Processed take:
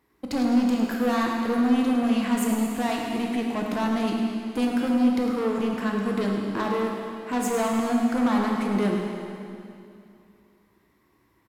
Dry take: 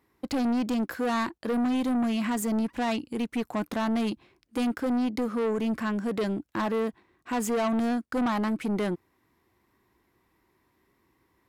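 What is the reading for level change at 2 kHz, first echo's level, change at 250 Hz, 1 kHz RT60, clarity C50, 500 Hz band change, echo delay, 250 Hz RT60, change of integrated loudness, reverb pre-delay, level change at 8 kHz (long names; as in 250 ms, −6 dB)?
+3.0 dB, −9.0 dB, +4.5 dB, 2.6 s, 1.0 dB, +3.0 dB, 105 ms, 2.7 s, +4.0 dB, 5 ms, +3.5 dB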